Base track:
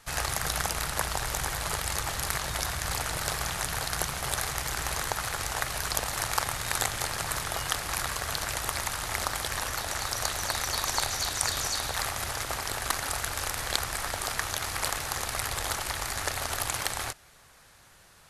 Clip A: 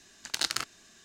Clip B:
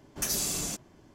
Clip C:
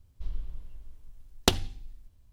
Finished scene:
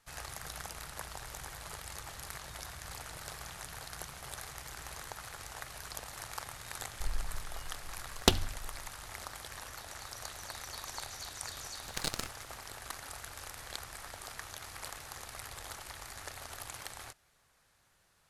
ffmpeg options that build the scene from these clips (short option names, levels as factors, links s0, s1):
-filter_complex "[0:a]volume=0.2[s0];[1:a]aeval=exprs='max(val(0),0)':c=same[s1];[3:a]atrim=end=2.32,asetpts=PTS-STARTPTS,volume=0.841,afade=t=in:d=0.004:c=hsin,afade=t=out:st=2.316:d=0.004:c=hsin,adelay=6800[s2];[s1]atrim=end=1.04,asetpts=PTS-STARTPTS,volume=0.708,afade=t=in:d=0.004:c=hsin,afade=t=out:st=1.036:d=0.004:c=hsin,adelay=11630[s3];[s0][s2][s3]amix=inputs=3:normalize=0"